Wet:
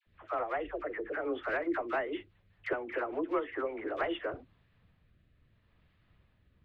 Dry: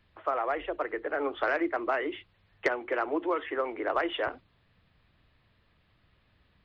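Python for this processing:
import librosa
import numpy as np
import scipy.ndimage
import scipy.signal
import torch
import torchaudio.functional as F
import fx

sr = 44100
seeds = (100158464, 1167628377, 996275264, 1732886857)

p1 = fx.rotary_switch(x, sr, hz=5.0, then_hz=0.75, switch_at_s=3.57)
p2 = np.clip(10.0 ** (24.5 / 20.0) * p1, -1.0, 1.0) / 10.0 ** (24.5 / 20.0)
p3 = p1 + F.gain(torch.from_numpy(p2), -3.0).numpy()
p4 = fx.bass_treble(p3, sr, bass_db=4, treble_db=-9)
p5 = fx.dispersion(p4, sr, late='lows', ms=66.0, hz=920.0)
y = F.gain(torch.from_numpy(p5), -6.5).numpy()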